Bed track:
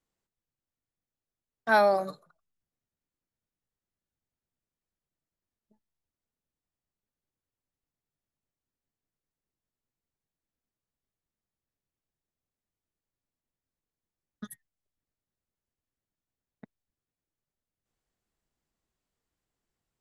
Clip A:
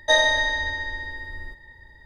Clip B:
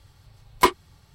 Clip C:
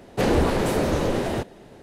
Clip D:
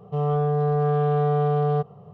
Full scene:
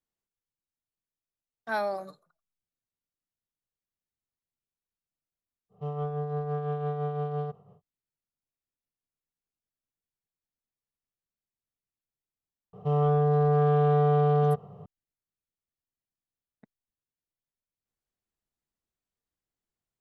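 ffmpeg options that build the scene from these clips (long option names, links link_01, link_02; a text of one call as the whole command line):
ffmpeg -i bed.wav -i cue0.wav -i cue1.wav -i cue2.wav -i cue3.wav -filter_complex "[4:a]asplit=2[link_01][link_02];[0:a]volume=-8dB[link_03];[link_01]tremolo=f=5.9:d=0.44,atrim=end=2.13,asetpts=PTS-STARTPTS,volume=-8dB,afade=type=in:duration=0.1,afade=type=out:start_time=2.03:duration=0.1,adelay=250929S[link_04];[link_02]atrim=end=2.13,asetpts=PTS-STARTPTS,volume=-1dB,afade=type=in:duration=0.004:curve=hsin,afade=type=out:start_time=2.126:duration=0.004:curve=hsin,adelay=12730[link_05];[link_03][link_04][link_05]amix=inputs=3:normalize=0" out.wav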